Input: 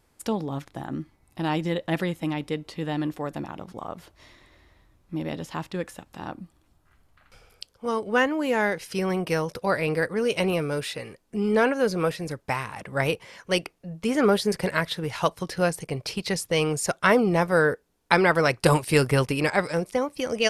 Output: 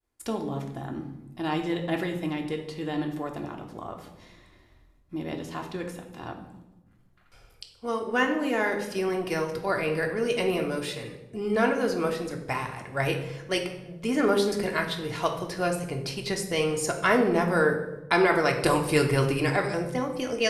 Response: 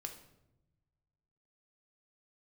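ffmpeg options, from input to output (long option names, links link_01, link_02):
-filter_complex "[0:a]agate=range=-33dB:threshold=-55dB:ratio=3:detection=peak[link_01];[1:a]atrim=start_sample=2205,asetrate=36603,aresample=44100[link_02];[link_01][link_02]afir=irnorm=-1:irlink=0"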